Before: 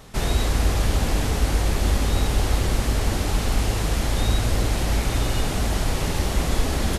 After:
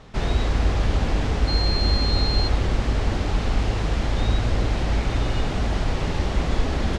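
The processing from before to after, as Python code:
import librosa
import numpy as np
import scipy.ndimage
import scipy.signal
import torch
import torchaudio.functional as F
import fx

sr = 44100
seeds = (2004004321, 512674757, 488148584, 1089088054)

y = fx.dmg_tone(x, sr, hz=4200.0, level_db=-22.0, at=(1.47, 2.47), fade=0.02)
y = fx.air_absorb(y, sr, metres=130.0)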